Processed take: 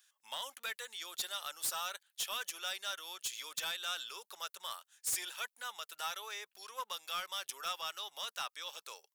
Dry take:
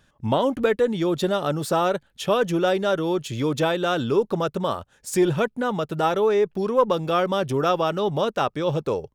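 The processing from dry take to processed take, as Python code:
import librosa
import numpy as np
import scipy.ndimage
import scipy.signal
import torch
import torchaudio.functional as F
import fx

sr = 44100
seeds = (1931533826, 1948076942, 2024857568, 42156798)

y = scipy.signal.sosfilt(scipy.signal.butter(2, 1000.0, 'highpass', fs=sr, output='sos'), x)
y = np.diff(y, prepend=0.0)
y = np.clip(10.0 ** (33.0 / 20.0) * y, -1.0, 1.0) / 10.0 ** (33.0 / 20.0)
y = F.gain(torch.from_numpy(y), 2.0).numpy()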